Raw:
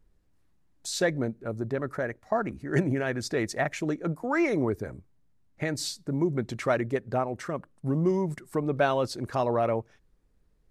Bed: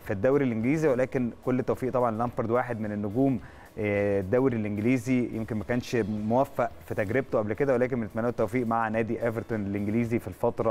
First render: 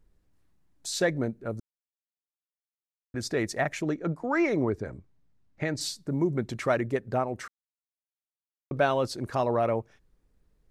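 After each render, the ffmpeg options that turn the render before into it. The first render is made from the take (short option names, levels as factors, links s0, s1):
-filter_complex "[0:a]asettb=1/sr,asplit=3[s0][s1][s2];[s0]atrim=end=3.824[s3];[s1]atrim=start=3.82:end=5.81,asetpts=PTS-STARTPTS,afade=t=in:d=0.004:c=qsin,afade=t=out:st=1.986:d=0.004:c=qsin,lowpass=6400[s4];[s2]atrim=start=5.806[s5];[s3][s4]acrossfade=d=0.004:c1=hsin:c2=qsin[s6];[s6][s5]acrossfade=d=0.004:c1=qsin:c2=hsin,asplit=5[s7][s8][s9][s10][s11];[s7]atrim=end=1.6,asetpts=PTS-STARTPTS,afade=t=out:st=1.596:d=0.004:c=hsin[s12];[s8]atrim=start=1.6:end=3.14,asetpts=PTS-STARTPTS,volume=0[s13];[s9]atrim=start=3.14:end=7.48,asetpts=PTS-STARTPTS,afade=t=in:d=0.004:c=hsin,afade=t=out:st=4.336:d=0.004:c=hsin[s14];[s10]atrim=start=7.48:end=8.71,asetpts=PTS-STARTPTS,volume=0[s15];[s11]atrim=start=8.71,asetpts=PTS-STARTPTS,afade=t=in:d=0.004:c=hsin[s16];[s12][s13][s14][s15][s16]concat=n=5:v=0:a=1"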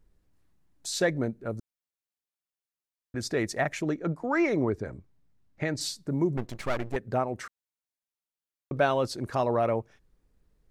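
-filter_complex "[0:a]asettb=1/sr,asplit=3[s0][s1][s2];[s0]atrim=end=6.374[s3];[s1]atrim=start=6.37:end=6.96,asetpts=PTS-STARTPTS,afade=t=in:d=0.004:c=qsin,afade=t=out:st=0.586:d=0.004:c=qsin,aeval=exprs='max(val(0),0)':c=same[s4];[s2]atrim=start=6.956[s5];[s3][s4]acrossfade=d=0.004:c1=hsin:c2=qsin[s6];[s6][s5]acrossfade=d=0.004:c1=qsin:c2=hsin"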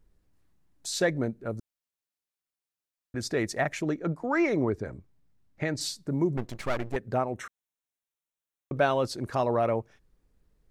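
-filter_complex "[0:a]asettb=1/sr,asplit=3[s0][s1][s2];[s0]atrim=end=7.344[s3];[s1]atrim=start=7.34:end=8.79,asetpts=PTS-STARTPTS,afade=t=in:d=0.004:c=qsin,afade=t=out:st=1.446:d=0.004:c=qsin,asuperstop=centerf=4700:order=4:qfactor=3.9[s4];[s2]atrim=start=8.786[s5];[s3][s4]acrossfade=d=0.004:c1=hsin:c2=qsin[s6];[s6][s5]acrossfade=d=0.004:c1=qsin:c2=hsin"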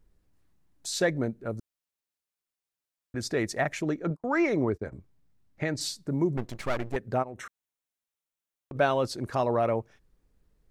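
-filter_complex "[0:a]asettb=1/sr,asplit=3[s0][s1][s2];[s0]atrim=end=4.104[s3];[s1]atrim=start=4.1:end=4.92,asetpts=PTS-STARTPTS,afade=t=in:d=0.004:c=qsin,afade=t=out:st=0.816:d=0.004:c=qsin,agate=range=0.0224:threshold=0.0126:ratio=16:release=100:detection=peak[s4];[s2]atrim=start=4.916[s5];[s3][s4]acrossfade=d=0.004:c1=hsin:c2=qsin[s6];[s6][s5]acrossfade=d=0.004:c1=qsin:c2=hsin,asplit=3[s7][s8][s9];[s7]afade=t=out:st=7.22:d=0.02[s10];[s8]acompressor=threshold=0.0158:ratio=6:attack=3.2:release=140:knee=1:detection=peak,afade=t=in:st=7.22:d=0.02,afade=t=out:st=8.74:d=0.02[s11];[s9]afade=t=in:st=8.74:d=0.02[s12];[s10][s11][s12]amix=inputs=3:normalize=0"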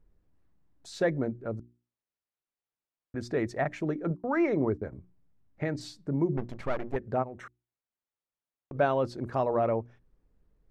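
-af "lowpass=f=1300:p=1,bandreject=f=60:t=h:w=6,bandreject=f=120:t=h:w=6,bandreject=f=180:t=h:w=6,bandreject=f=240:t=h:w=6,bandreject=f=300:t=h:w=6,bandreject=f=360:t=h:w=6"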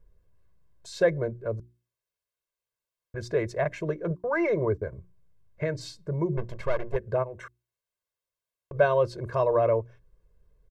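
-af "aecho=1:1:1.9:0.99"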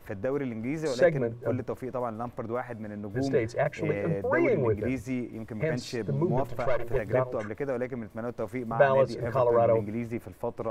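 -filter_complex "[1:a]volume=0.473[s0];[0:a][s0]amix=inputs=2:normalize=0"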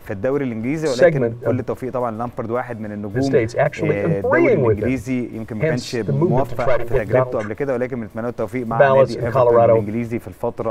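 -af "volume=3.16,alimiter=limit=0.794:level=0:latency=1"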